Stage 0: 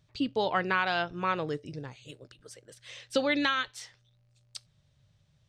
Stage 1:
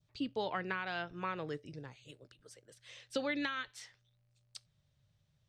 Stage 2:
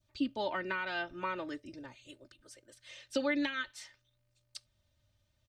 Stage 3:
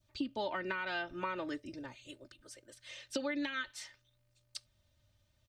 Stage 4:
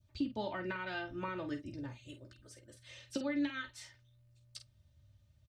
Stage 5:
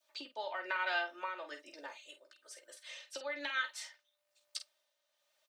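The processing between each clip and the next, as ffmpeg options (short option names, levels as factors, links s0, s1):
-filter_complex "[0:a]adynamicequalizer=threshold=0.01:dfrequency=1900:dqfactor=1.2:tfrequency=1900:tqfactor=1.2:attack=5:release=100:ratio=0.375:range=2.5:mode=boostabove:tftype=bell,acrossover=split=440[s0][s1];[s1]acompressor=threshold=0.0447:ratio=6[s2];[s0][s2]amix=inputs=2:normalize=0,volume=0.422"
-af "aecho=1:1:3.3:0.86"
-af "acompressor=threshold=0.0178:ratio=6,volume=1.26"
-filter_complex "[0:a]equalizer=f=100:w=0.59:g=15,asplit=2[s0][s1];[s1]aecho=0:1:14|49:0.335|0.335[s2];[s0][s2]amix=inputs=2:normalize=0,volume=0.562"
-af "tremolo=f=1.1:d=0.55,highpass=f=560:w=0.5412,highpass=f=560:w=1.3066,volume=2.37"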